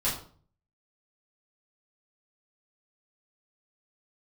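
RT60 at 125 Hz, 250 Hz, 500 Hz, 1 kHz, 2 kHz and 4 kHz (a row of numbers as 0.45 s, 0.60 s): 0.75 s, 0.55 s, 0.50 s, 0.45 s, 0.35 s, 0.35 s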